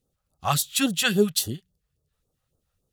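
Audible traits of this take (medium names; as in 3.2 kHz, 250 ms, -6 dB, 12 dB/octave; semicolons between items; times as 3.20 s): phasing stages 2, 3.6 Hz, lowest notch 280–2200 Hz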